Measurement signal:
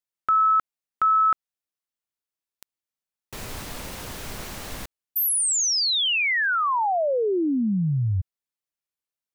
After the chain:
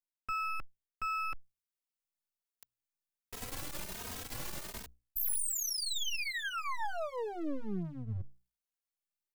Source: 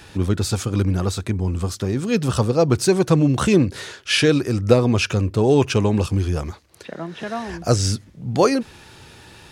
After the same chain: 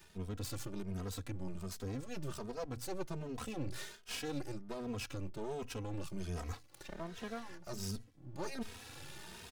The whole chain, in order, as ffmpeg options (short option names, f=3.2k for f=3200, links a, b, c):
-filter_complex "[0:a]bandreject=f=60:t=h:w=6,bandreject=f=120:t=h:w=6,areverse,acompressor=threshold=-28dB:ratio=8:attack=9.3:release=550:knee=6:detection=rms,areverse,aeval=exprs='max(val(0),0)':c=same,alimiter=level_in=1.5dB:limit=-24dB:level=0:latency=1:release=100,volume=-1.5dB,highshelf=f=7.1k:g=5,asplit=2[a][b];[b]adelay=2.9,afreqshift=1.3[c];[a][c]amix=inputs=2:normalize=1"